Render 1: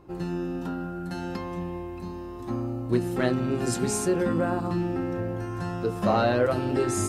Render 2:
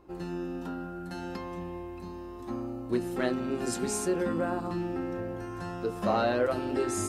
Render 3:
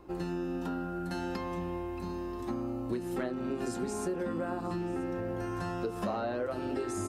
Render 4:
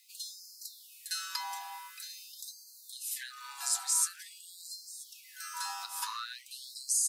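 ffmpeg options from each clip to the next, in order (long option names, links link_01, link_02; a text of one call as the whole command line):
ffmpeg -i in.wav -af "equalizer=frequency=130:width_type=o:width=0.58:gain=-11.5,volume=-3.5dB" out.wav
ffmpeg -i in.wav -filter_complex "[0:a]acrossover=split=740|1500[link_01][link_02][link_03];[link_03]alimiter=level_in=8.5dB:limit=-24dB:level=0:latency=1:release=441,volume=-8.5dB[link_04];[link_01][link_02][link_04]amix=inputs=3:normalize=0,acompressor=threshold=-35dB:ratio=6,aecho=1:1:982:0.112,volume=4dB" out.wav
ffmpeg -i in.wav -af "aexciter=amount=4.9:drive=4:freq=3700,afreqshift=-80,afftfilt=real='re*gte(b*sr/1024,710*pow(4100/710,0.5+0.5*sin(2*PI*0.47*pts/sr)))':imag='im*gte(b*sr/1024,710*pow(4100/710,0.5+0.5*sin(2*PI*0.47*pts/sr)))':win_size=1024:overlap=0.75,volume=2.5dB" out.wav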